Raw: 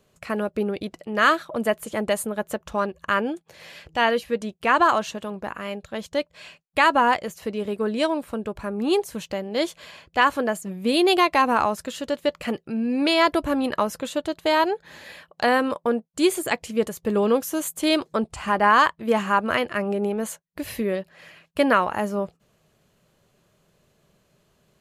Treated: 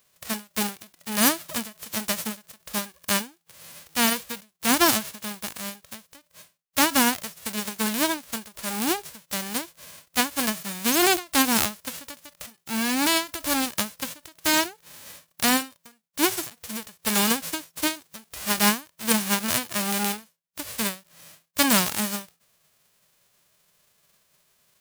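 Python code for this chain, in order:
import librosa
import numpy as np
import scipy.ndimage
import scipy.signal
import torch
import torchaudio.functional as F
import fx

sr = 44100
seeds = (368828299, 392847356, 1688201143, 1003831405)

y = fx.envelope_flatten(x, sr, power=0.1)
y = fx.end_taper(y, sr, db_per_s=210.0)
y = y * 10.0 ** (-1.0 / 20.0)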